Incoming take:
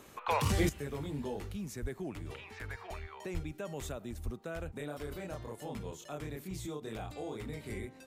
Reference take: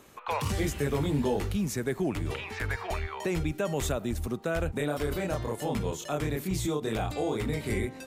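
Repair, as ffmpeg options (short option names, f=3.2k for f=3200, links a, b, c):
-filter_complex "[0:a]asplit=3[a][b][c];[a]afade=t=out:st=1.81:d=0.02[d];[b]highpass=f=140:w=0.5412,highpass=f=140:w=1.3066,afade=t=in:st=1.81:d=0.02,afade=t=out:st=1.93:d=0.02[e];[c]afade=t=in:st=1.93:d=0.02[f];[d][e][f]amix=inputs=3:normalize=0,asplit=3[g][h][i];[g]afade=t=out:st=3.33:d=0.02[j];[h]highpass=f=140:w=0.5412,highpass=f=140:w=1.3066,afade=t=in:st=3.33:d=0.02,afade=t=out:st=3.45:d=0.02[k];[i]afade=t=in:st=3.45:d=0.02[l];[j][k][l]amix=inputs=3:normalize=0,asplit=3[m][n][o];[m]afade=t=out:st=4.24:d=0.02[p];[n]highpass=f=140:w=0.5412,highpass=f=140:w=1.3066,afade=t=in:st=4.24:d=0.02,afade=t=out:st=4.36:d=0.02[q];[o]afade=t=in:st=4.36:d=0.02[r];[p][q][r]amix=inputs=3:normalize=0,asetnsamples=n=441:p=0,asendcmd='0.69 volume volume 11dB',volume=0dB"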